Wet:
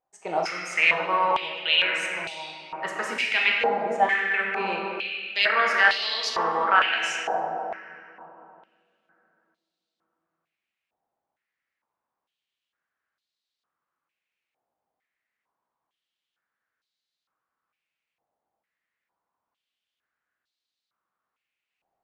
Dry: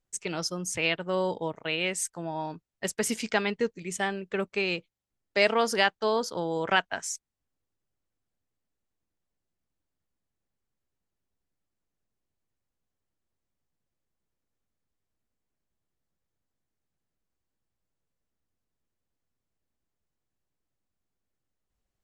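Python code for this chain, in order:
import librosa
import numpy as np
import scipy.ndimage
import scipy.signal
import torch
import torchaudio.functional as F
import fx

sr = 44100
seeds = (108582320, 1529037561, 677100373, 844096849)

p1 = fx.over_compress(x, sr, threshold_db=-27.0, ratio=-1.0)
p2 = x + (p1 * 10.0 ** (-2.0 / 20.0))
p3 = fx.room_shoebox(p2, sr, seeds[0], volume_m3=200.0, walls='hard', distance_m=0.65)
p4 = fx.filter_held_bandpass(p3, sr, hz=2.2, low_hz=770.0, high_hz=4000.0)
y = p4 * 10.0 ** (8.5 / 20.0)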